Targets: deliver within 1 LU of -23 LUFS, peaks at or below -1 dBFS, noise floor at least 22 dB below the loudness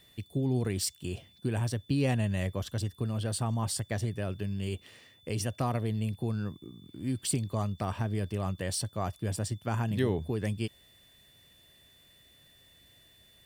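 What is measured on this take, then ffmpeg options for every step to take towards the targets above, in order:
steady tone 3.5 kHz; tone level -60 dBFS; loudness -32.5 LUFS; peak level -15.0 dBFS; loudness target -23.0 LUFS
-> -af "bandreject=f=3500:w=30"
-af "volume=2.99"

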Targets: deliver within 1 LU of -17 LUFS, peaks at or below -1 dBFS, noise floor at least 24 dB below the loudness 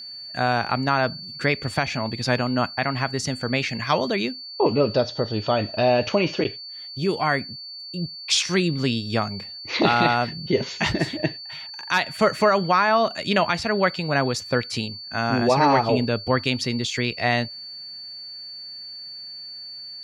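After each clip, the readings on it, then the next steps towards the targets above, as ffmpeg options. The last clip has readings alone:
steady tone 4.5 kHz; tone level -35 dBFS; loudness -23.0 LUFS; peak level -3.5 dBFS; loudness target -17.0 LUFS
-> -af "bandreject=f=4500:w=30"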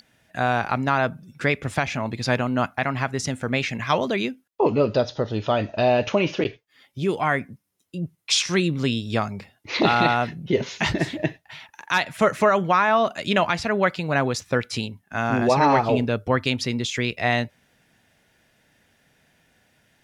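steady tone not found; loudness -23.0 LUFS; peak level -3.5 dBFS; loudness target -17.0 LUFS
-> -af "volume=2,alimiter=limit=0.891:level=0:latency=1"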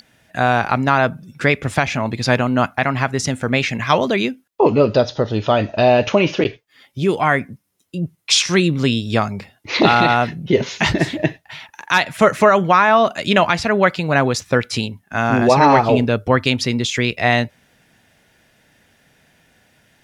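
loudness -17.0 LUFS; peak level -1.0 dBFS; noise floor -60 dBFS

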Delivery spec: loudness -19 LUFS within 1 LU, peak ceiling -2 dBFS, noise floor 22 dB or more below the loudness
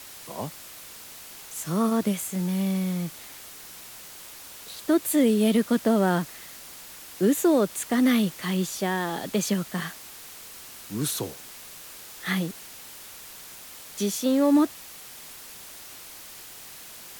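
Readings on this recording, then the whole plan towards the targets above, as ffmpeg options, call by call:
noise floor -44 dBFS; noise floor target -48 dBFS; loudness -25.5 LUFS; peak level -11.0 dBFS; loudness target -19.0 LUFS
-> -af "afftdn=nr=6:nf=-44"
-af "volume=2.11"

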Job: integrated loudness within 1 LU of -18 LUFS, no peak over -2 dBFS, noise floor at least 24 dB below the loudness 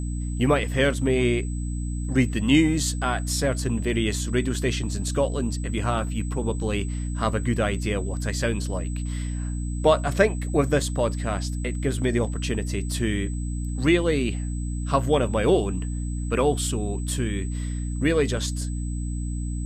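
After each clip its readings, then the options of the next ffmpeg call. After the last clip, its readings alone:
hum 60 Hz; highest harmonic 300 Hz; hum level -26 dBFS; steady tone 8 kHz; tone level -43 dBFS; loudness -25.0 LUFS; peak level -6.0 dBFS; loudness target -18.0 LUFS
-> -af "bandreject=f=60:t=h:w=6,bandreject=f=120:t=h:w=6,bandreject=f=180:t=h:w=6,bandreject=f=240:t=h:w=6,bandreject=f=300:t=h:w=6"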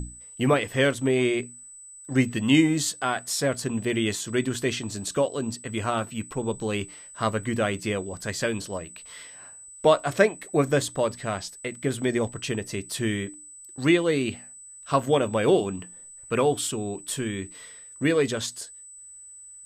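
hum not found; steady tone 8 kHz; tone level -43 dBFS
-> -af "bandreject=f=8000:w=30"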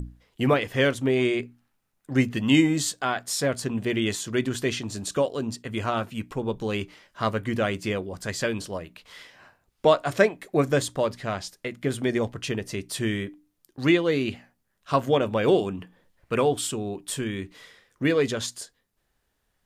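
steady tone not found; loudness -26.0 LUFS; peak level -5.5 dBFS; loudness target -18.0 LUFS
-> -af "volume=2.51,alimiter=limit=0.794:level=0:latency=1"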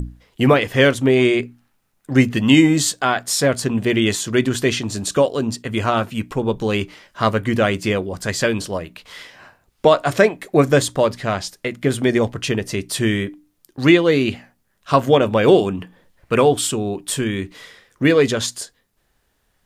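loudness -18.5 LUFS; peak level -2.0 dBFS; noise floor -66 dBFS

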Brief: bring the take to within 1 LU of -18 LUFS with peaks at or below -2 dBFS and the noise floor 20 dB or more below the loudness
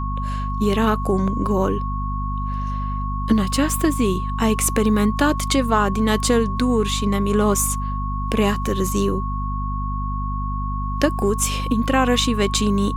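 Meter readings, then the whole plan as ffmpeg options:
hum 50 Hz; highest harmonic 250 Hz; hum level -23 dBFS; steady tone 1.1 kHz; tone level -28 dBFS; loudness -21.0 LUFS; peak level -3.5 dBFS; loudness target -18.0 LUFS
-> -af "bandreject=f=50:t=h:w=4,bandreject=f=100:t=h:w=4,bandreject=f=150:t=h:w=4,bandreject=f=200:t=h:w=4,bandreject=f=250:t=h:w=4"
-af "bandreject=f=1100:w=30"
-af "volume=1.41,alimiter=limit=0.794:level=0:latency=1"

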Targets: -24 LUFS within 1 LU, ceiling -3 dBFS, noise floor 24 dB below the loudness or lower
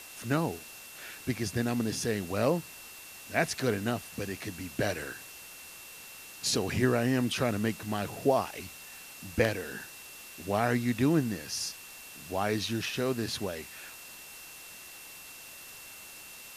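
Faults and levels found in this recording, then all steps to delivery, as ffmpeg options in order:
steady tone 2.7 kHz; tone level -51 dBFS; noise floor -48 dBFS; noise floor target -55 dBFS; loudness -31.0 LUFS; peak level -10.5 dBFS; loudness target -24.0 LUFS
-> -af "bandreject=f=2700:w=30"
-af "afftdn=nr=7:nf=-48"
-af "volume=2.24"

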